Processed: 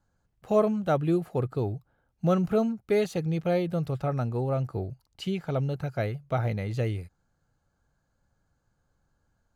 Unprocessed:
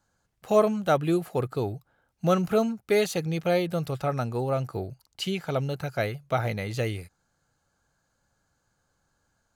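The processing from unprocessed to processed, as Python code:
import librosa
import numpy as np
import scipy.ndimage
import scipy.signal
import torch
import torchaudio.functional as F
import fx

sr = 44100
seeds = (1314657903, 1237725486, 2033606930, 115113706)

y = fx.tilt_eq(x, sr, slope=-2.0)
y = y * librosa.db_to_amplitude(-4.0)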